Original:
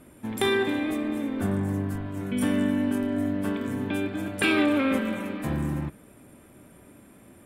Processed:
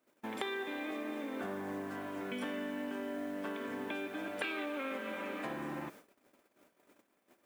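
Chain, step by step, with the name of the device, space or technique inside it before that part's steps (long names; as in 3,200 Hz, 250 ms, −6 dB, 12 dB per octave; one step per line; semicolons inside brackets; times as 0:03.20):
baby monitor (band-pass filter 430–4,000 Hz; downward compressor, threshold −38 dBFS, peak gain reduction 15.5 dB; white noise bed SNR 24 dB; noise gate −54 dBFS, range −23 dB)
level +1.5 dB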